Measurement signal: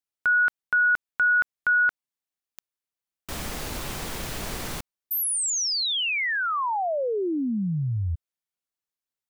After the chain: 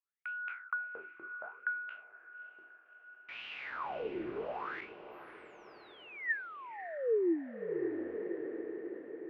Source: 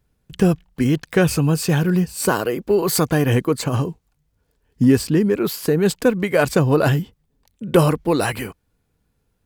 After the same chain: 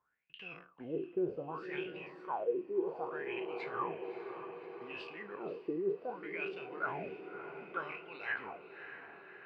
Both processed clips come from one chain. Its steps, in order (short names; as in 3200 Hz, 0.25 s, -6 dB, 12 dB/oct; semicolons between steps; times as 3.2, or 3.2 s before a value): spectral trails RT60 0.35 s; dynamic EQ 1800 Hz, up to -6 dB, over -43 dBFS, Q 4.7; reverse; compressor 6:1, threshold -24 dBFS; reverse; wah 0.65 Hz 340–2800 Hz, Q 10; diffused feedback echo 0.597 s, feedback 61%, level -12.5 dB; vocal rider within 5 dB 0.5 s; air absorption 300 m; gain +5 dB